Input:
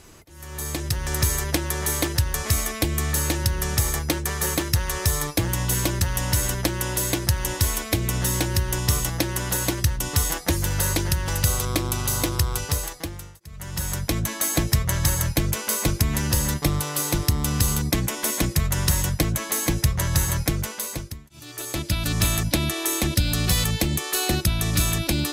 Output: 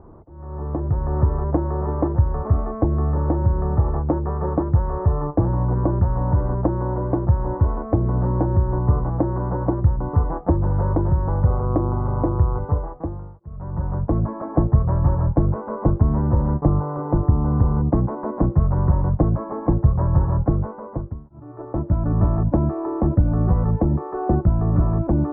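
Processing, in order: steep low-pass 1100 Hz 36 dB/oct; gain +5.5 dB

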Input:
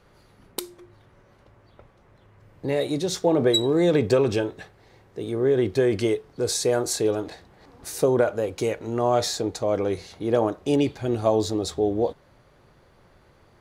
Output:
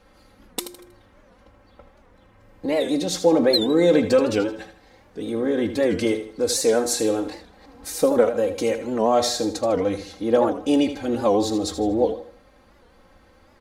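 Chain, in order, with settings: comb 3.8 ms, depth 90%; feedback echo 79 ms, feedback 36%, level -10.5 dB; record warp 78 rpm, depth 160 cents

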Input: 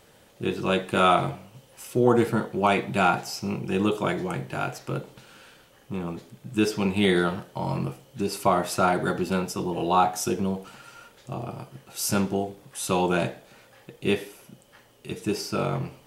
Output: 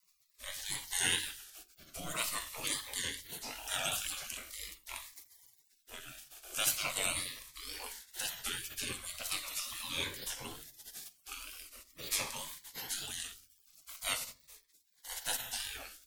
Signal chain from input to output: crackle 67/s -48 dBFS; high shelf 7400 Hz +12 dB; notches 60/120/180/240/300/360 Hz; on a send: flutter echo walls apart 10.5 m, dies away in 0.24 s; on the sum: spectral gate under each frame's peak -25 dB weak; shoebox room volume 160 m³, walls furnished, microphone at 0.39 m; in parallel at -2 dB: compressor, threshold -49 dBFS, peak gain reduction 16.5 dB; on the sum: rotary speaker horn 0.7 Hz; wow and flutter 110 cents; cascading phaser falling 0.42 Hz; gain +5 dB

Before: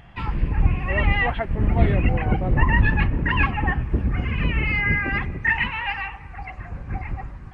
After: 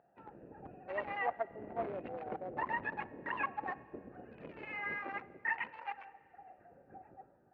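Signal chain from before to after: Wiener smoothing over 41 samples; ladder band-pass 830 Hz, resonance 20%; Schroeder reverb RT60 2.2 s, combs from 28 ms, DRR 19.5 dB; gain +3.5 dB

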